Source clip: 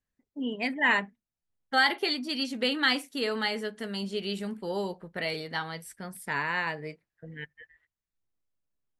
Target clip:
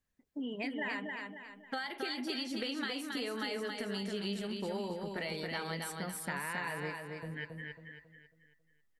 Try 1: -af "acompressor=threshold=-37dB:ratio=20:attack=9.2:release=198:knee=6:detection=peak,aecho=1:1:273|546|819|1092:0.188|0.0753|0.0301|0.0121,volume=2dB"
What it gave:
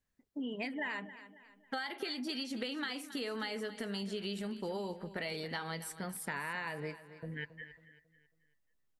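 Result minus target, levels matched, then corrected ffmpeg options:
echo-to-direct -10.5 dB
-af "acompressor=threshold=-37dB:ratio=20:attack=9.2:release=198:knee=6:detection=peak,aecho=1:1:273|546|819|1092|1365:0.631|0.252|0.101|0.0404|0.0162,volume=2dB"

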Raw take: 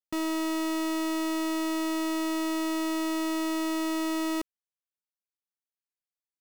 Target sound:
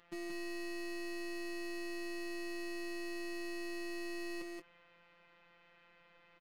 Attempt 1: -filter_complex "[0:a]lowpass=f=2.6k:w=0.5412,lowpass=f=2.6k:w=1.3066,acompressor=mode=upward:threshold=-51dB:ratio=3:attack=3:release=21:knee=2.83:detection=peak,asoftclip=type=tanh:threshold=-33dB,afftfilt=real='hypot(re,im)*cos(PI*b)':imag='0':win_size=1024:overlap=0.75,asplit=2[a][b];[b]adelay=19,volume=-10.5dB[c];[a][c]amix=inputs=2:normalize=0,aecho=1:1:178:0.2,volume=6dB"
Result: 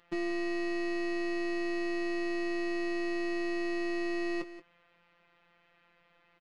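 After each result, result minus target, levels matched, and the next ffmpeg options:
echo-to-direct -11 dB; soft clip: distortion -7 dB
-filter_complex "[0:a]lowpass=f=2.6k:w=0.5412,lowpass=f=2.6k:w=1.3066,acompressor=mode=upward:threshold=-51dB:ratio=3:attack=3:release=21:knee=2.83:detection=peak,asoftclip=type=tanh:threshold=-33dB,afftfilt=real='hypot(re,im)*cos(PI*b)':imag='0':win_size=1024:overlap=0.75,asplit=2[a][b];[b]adelay=19,volume=-10.5dB[c];[a][c]amix=inputs=2:normalize=0,aecho=1:1:178:0.708,volume=6dB"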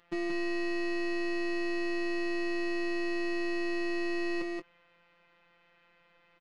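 soft clip: distortion -7 dB
-filter_complex "[0:a]lowpass=f=2.6k:w=0.5412,lowpass=f=2.6k:w=1.3066,acompressor=mode=upward:threshold=-51dB:ratio=3:attack=3:release=21:knee=2.83:detection=peak,asoftclip=type=tanh:threshold=-44dB,afftfilt=real='hypot(re,im)*cos(PI*b)':imag='0':win_size=1024:overlap=0.75,asplit=2[a][b];[b]adelay=19,volume=-10.5dB[c];[a][c]amix=inputs=2:normalize=0,aecho=1:1:178:0.708,volume=6dB"

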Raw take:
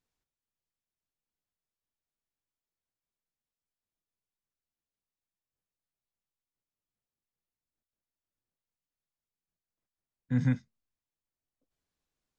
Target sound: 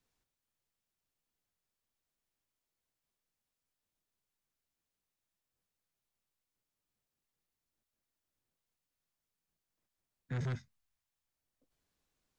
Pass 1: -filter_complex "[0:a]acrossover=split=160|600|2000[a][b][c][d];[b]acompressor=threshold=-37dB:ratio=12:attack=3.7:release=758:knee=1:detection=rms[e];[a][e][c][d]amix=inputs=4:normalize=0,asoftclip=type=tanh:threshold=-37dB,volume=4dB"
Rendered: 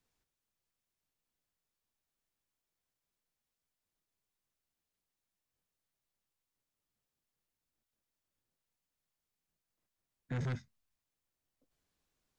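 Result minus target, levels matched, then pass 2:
compressor: peak gain reduction -8 dB
-filter_complex "[0:a]acrossover=split=160|600|2000[a][b][c][d];[b]acompressor=threshold=-46dB:ratio=12:attack=3.7:release=758:knee=1:detection=rms[e];[a][e][c][d]amix=inputs=4:normalize=0,asoftclip=type=tanh:threshold=-37dB,volume=4dB"

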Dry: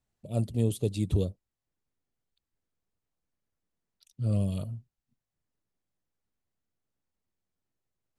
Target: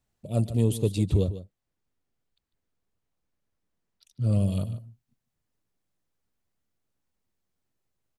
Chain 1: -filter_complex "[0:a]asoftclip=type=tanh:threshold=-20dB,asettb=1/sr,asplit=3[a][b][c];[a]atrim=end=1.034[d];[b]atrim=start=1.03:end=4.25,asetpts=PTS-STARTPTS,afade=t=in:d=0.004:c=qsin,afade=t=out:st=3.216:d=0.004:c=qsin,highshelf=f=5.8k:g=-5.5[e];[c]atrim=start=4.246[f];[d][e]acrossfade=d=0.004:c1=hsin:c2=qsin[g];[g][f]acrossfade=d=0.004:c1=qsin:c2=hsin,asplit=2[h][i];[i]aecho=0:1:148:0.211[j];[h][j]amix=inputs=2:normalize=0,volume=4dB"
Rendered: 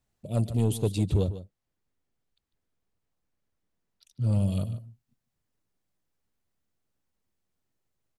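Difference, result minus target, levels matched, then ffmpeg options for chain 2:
soft clip: distortion +12 dB
-filter_complex "[0:a]asoftclip=type=tanh:threshold=-12.5dB,asettb=1/sr,asplit=3[a][b][c];[a]atrim=end=1.034[d];[b]atrim=start=1.03:end=4.25,asetpts=PTS-STARTPTS,afade=t=in:d=0.004:c=qsin,afade=t=out:st=3.216:d=0.004:c=qsin,highshelf=f=5.8k:g=-5.5[e];[c]atrim=start=4.246[f];[d][e]acrossfade=d=0.004:c1=hsin:c2=qsin[g];[g][f]acrossfade=d=0.004:c1=qsin:c2=hsin,asplit=2[h][i];[i]aecho=0:1:148:0.211[j];[h][j]amix=inputs=2:normalize=0,volume=4dB"

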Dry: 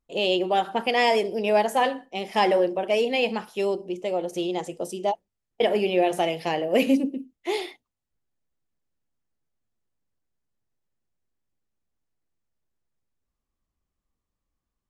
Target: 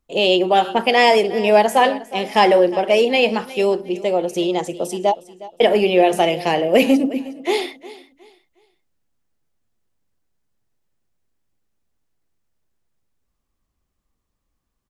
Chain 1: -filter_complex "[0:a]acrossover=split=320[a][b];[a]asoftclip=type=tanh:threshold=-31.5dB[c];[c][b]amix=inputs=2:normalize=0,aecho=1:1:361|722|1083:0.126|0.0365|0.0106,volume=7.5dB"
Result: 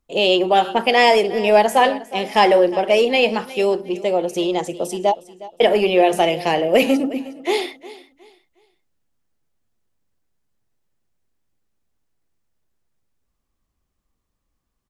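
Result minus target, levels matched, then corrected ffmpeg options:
soft clip: distortion +7 dB
-filter_complex "[0:a]acrossover=split=320[a][b];[a]asoftclip=type=tanh:threshold=-22.5dB[c];[c][b]amix=inputs=2:normalize=0,aecho=1:1:361|722|1083:0.126|0.0365|0.0106,volume=7.5dB"

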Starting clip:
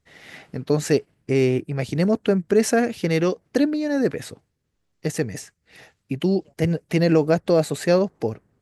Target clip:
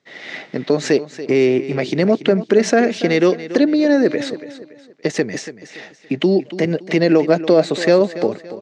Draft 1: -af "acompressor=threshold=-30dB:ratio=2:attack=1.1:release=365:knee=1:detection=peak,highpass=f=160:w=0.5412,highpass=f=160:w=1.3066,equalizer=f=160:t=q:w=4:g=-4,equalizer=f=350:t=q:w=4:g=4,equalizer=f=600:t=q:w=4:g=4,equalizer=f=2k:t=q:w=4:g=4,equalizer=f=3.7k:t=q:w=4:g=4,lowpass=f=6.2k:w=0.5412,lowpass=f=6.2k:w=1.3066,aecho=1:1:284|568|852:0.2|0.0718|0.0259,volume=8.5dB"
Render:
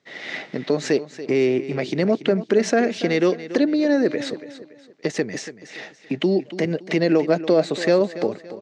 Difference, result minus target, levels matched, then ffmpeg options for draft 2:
compressor: peak gain reduction +4.5 dB
-af "acompressor=threshold=-21dB:ratio=2:attack=1.1:release=365:knee=1:detection=peak,highpass=f=160:w=0.5412,highpass=f=160:w=1.3066,equalizer=f=160:t=q:w=4:g=-4,equalizer=f=350:t=q:w=4:g=4,equalizer=f=600:t=q:w=4:g=4,equalizer=f=2k:t=q:w=4:g=4,equalizer=f=3.7k:t=q:w=4:g=4,lowpass=f=6.2k:w=0.5412,lowpass=f=6.2k:w=1.3066,aecho=1:1:284|568|852:0.2|0.0718|0.0259,volume=8.5dB"

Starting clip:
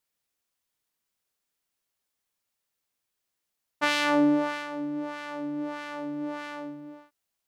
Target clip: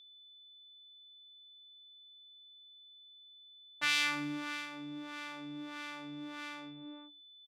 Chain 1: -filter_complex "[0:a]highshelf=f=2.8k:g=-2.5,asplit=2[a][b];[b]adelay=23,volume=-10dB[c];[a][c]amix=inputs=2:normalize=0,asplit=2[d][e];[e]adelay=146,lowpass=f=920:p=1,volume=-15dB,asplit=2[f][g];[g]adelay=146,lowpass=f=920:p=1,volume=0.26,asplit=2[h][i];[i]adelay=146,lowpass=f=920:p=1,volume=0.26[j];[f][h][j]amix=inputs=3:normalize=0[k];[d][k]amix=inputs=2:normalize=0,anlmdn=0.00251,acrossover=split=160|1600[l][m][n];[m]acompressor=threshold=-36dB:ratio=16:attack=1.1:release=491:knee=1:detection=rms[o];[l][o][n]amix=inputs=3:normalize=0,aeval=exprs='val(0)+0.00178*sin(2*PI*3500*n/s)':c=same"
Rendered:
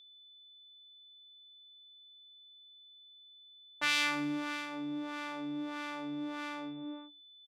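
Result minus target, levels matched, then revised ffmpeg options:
compressor: peak gain reduction -8.5 dB
-filter_complex "[0:a]highshelf=f=2.8k:g=-2.5,asplit=2[a][b];[b]adelay=23,volume=-10dB[c];[a][c]amix=inputs=2:normalize=0,asplit=2[d][e];[e]adelay=146,lowpass=f=920:p=1,volume=-15dB,asplit=2[f][g];[g]adelay=146,lowpass=f=920:p=1,volume=0.26,asplit=2[h][i];[i]adelay=146,lowpass=f=920:p=1,volume=0.26[j];[f][h][j]amix=inputs=3:normalize=0[k];[d][k]amix=inputs=2:normalize=0,anlmdn=0.00251,acrossover=split=160|1600[l][m][n];[m]acompressor=threshold=-45dB:ratio=16:attack=1.1:release=491:knee=1:detection=rms[o];[l][o][n]amix=inputs=3:normalize=0,aeval=exprs='val(0)+0.00178*sin(2*PI*3500*n/s)':c=same"

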